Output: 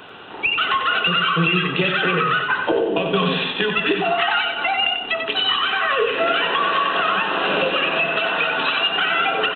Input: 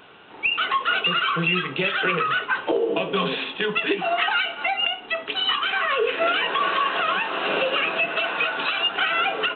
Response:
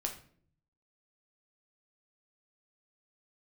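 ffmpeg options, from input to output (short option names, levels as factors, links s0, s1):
-filter_complex "[0:a]bandreject=f=2200:w=11,acrossover=split=220[s0][s1];[s1]acompressor=threshold=0.0316:ratio=2[s2];[s0][s2]amix=inputs=2:normalize=0,aecho=1:1:93|186|279|372|465:0.501|0.195|0.0762|0.0297|0.0116,volume=2.51"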